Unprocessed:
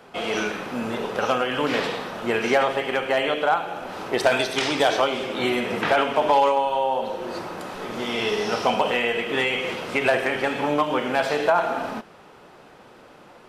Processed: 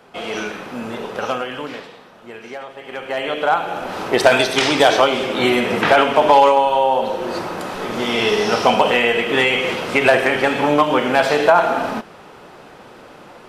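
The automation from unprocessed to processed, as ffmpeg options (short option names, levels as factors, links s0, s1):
-af "volume=9.44,afade=t=out:st=1.33:d=0.53:silence=0.237137,afade=t=in:st=2.76:d=0.54:silence=0.223872,afade=t=in:st=3.3:d=0.47:silence=0.473151"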